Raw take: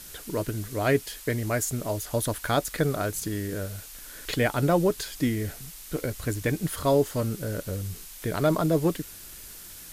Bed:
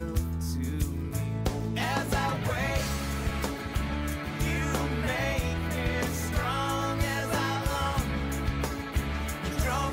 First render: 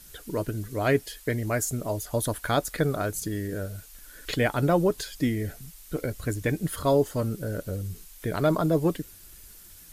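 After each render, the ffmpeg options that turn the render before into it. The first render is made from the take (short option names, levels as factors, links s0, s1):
-af "afftdn=nr=8:nf=-44"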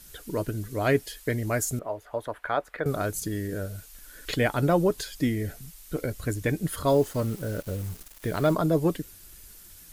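-filter_complex "[0:a]asettb=1/sr,asplit=3[s0][s1][s2];[s0]atrim=end=1.794[s3];[s1]atrim=start=1.79:end=2.86,asetpts=PTS-STARTPTS,afade=t=in:d=0.004:c=qsin,afade=t=out:st=1.066:d=0.004:c=qsin,acrossover=split=430 2500:gain=0.178 1 0.0631[s4][s5][s6];[s4][s5][s6]amix=inputs=3:normalize=0[s7];[s2]atrim=start=2.856[s8];[s3][s7]acrossfade=d=0.004:c1=hsin:c2=qsin[s9];[s9][s8]acrossfade=d=0.004:c1=qsin:c2=hsin,asettb=1/sr,asplit=3[s10][s11][s12];[s10]atrim=end=6.884[s13];[s11]atrim=start=6.88:end=8.54,asetpts=PTS-STARTPTS,afade=t=in:d=0.004:c=qsin,afade=t=out:st=1.656:d=0.004:c=qsin,acrusher=bits=6:mix=0:aa=0.5[s14];[s12]atrim=start=8.536[s15];[s13][s14]acrossfade=d=0.004:c1=hsin:c2=qsin[s16];[s16][s15]acrossfade=d=0.004:c1=qsin:c2=hsin"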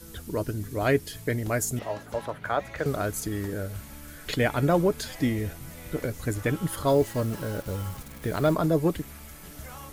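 -filter_complex "[1:a]volume=0.188[s0];[0:a][s0]amix=inputs=2:normalize=0"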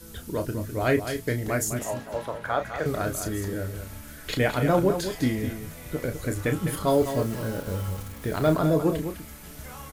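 -filter_complex "[0:a]asplit=2[s0][s1];[s1]adelay=32,volume=0.398[s2];[s0][s2]amix=inputs=2:normalize=0,aecho=1:1:205:0.355"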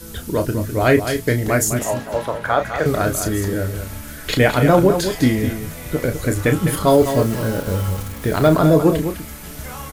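-af "volume=2.82,alimiter=limit=0.708:level=0:latency=1"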